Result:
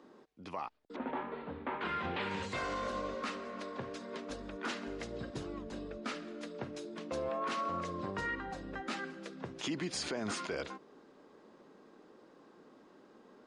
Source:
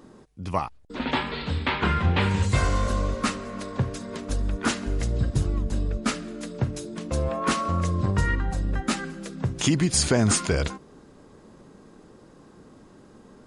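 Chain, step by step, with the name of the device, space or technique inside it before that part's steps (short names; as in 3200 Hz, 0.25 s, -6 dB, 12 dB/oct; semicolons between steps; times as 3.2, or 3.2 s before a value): 0.96–1.81 LPF 1100 Hz 12 dB/oct; DJ mixer with the lows and highs turned down (three-band isolator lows -22 dB, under 230 Hz, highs -17 dB, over 5400 Hz; limiter -22 dBFS, peak gain reduction 10.5 dB); gain -6 dB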